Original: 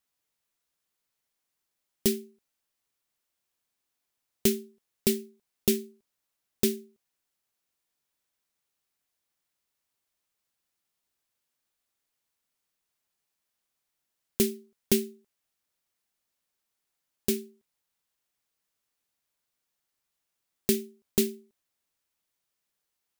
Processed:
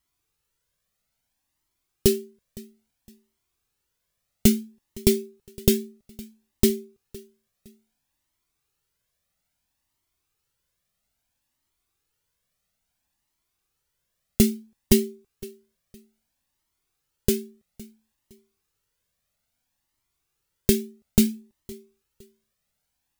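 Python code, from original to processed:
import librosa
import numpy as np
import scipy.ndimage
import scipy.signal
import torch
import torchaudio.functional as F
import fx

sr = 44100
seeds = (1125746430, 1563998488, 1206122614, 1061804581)

p1 = fx.low_shelf(x, sr, hz=230.0, db=10.5)
p2 = p1 + fx.echo_feedback(p1, sr, ms=512, feedback_pct=30, wet_db=-22, dry=0)
p3 = fx.comb_cascade(p2, sr, direction='rising', hz=0.6)
y = F.gain(torch.from_numpy(p3), 8.0).numpy()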